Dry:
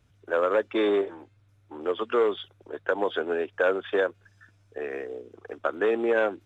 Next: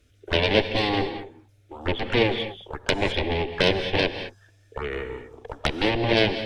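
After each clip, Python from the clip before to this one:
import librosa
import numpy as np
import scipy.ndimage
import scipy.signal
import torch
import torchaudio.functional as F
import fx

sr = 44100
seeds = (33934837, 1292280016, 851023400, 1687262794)

y = fx.cheby_harmonics(x, sr, harmonics=(3, 4, 6, 7), levels_db=(-13, -9, -8, -14), full_scale_db=-11.5)
y = fx.env_phaser(y, sr, low_hz=150.0, high_hz=1300.0, full_db=-28.0)
y = fx.rev_gated(y, sr, seeds[0], gate_ms=240, shape='rising', drr_db=9.5)
y = F.gain(torch.from_numpy(y), 6.5).numpy()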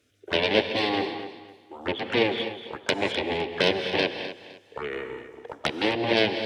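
y = scipy.signal.sosfilt(scipy.signal.butter(2, 170.0, 'highpass', fs=sr, output='sos'), x)
y = fx.echo_feedback(y, sr, ms=256, feedback_pct=28, wet_db=-13)
y = F.gain(torch.from_numpy(y), -1.5).numpy()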